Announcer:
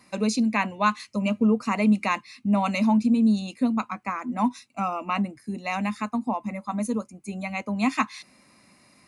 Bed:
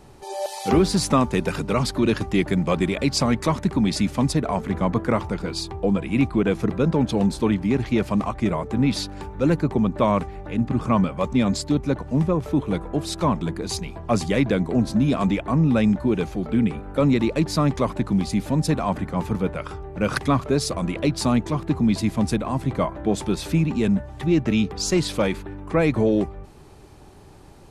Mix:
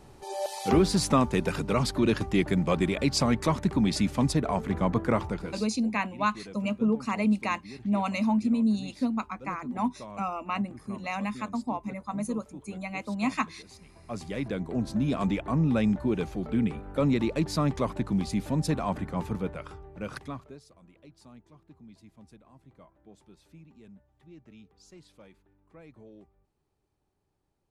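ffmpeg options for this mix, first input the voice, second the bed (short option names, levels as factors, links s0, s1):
-filter_complex "[0:a]adelay=5400,volume=0.596[s0];[1:a]volume=4.73,afade=t=out:st=5.25:d=0.47:silence=0.105925,afade=t=in:st=13.8:d=1.49:silence=0.133352,afade=t=out:st=19.12:d=1.5:silence=0.0530884[s1];[s0][s1]amix=inputs=2:normalize=0"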